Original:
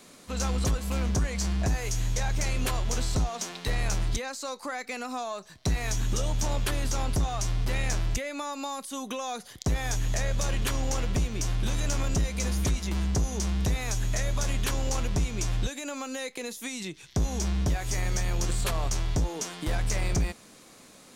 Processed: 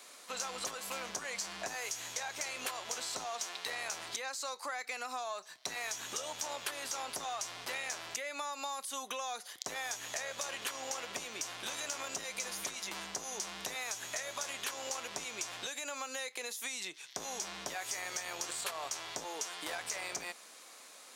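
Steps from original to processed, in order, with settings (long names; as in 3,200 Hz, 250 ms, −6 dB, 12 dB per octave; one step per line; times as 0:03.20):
high-pass filter 670 Hz 12 dB per octave
downward compressor, threshold −35 dBFS, peak gain reduction 8 dB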